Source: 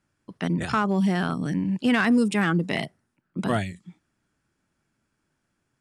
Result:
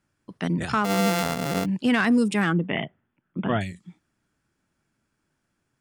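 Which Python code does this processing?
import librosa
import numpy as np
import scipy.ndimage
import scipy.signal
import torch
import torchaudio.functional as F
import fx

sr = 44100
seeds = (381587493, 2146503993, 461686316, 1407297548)

y = fx.sample_sort(x, sr, block=64, at=(0.84, 1.64), fade=0.02)
y = fx.brickwall_lowpass(y, sr, high_hz=3600.0, at=(2.53, 3.61))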